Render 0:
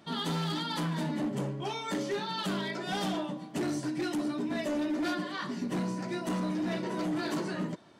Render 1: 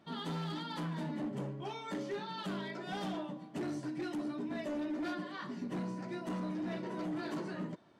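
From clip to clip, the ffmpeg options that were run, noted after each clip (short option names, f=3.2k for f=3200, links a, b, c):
-af "highshelf=f=4.1k:g=-9,volume=-6dB"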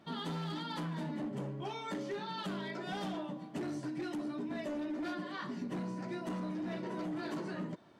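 -af "acompressor=threshold=-40dB:ratio=2.5,volume=3dB"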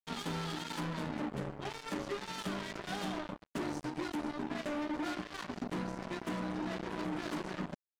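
-af "acrusher=bits=5:mix=0:aa=0.5"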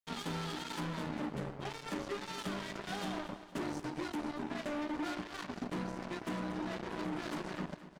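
-af "aecho=1:1:233|466|699|932:0.2|0.0938|0.0441|0.0207,volume=-1dB"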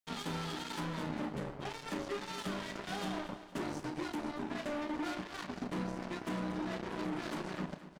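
-filter_complex "[0:a]asplit=2[a][b];[b]adelay=32,volume=-11.5dB[c];[a][c]amix=inputs=2:normalize=0"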